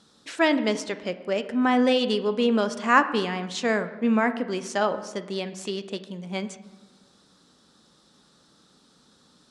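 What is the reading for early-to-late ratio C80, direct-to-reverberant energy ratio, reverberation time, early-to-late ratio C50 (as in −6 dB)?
14.5 dB, 10.5 dB, 1.2 s, 12.5 dB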